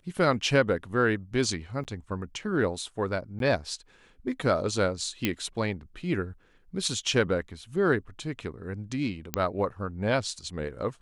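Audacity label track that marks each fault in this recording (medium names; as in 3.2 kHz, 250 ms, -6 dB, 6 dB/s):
1.840000	1.850000	dropout 8.6 ms
3.390000	3.400000	dropout 12 ms
5.250000	5.250000	pop -10 dBFS
9.340000	9.340000	pop -9 dBFS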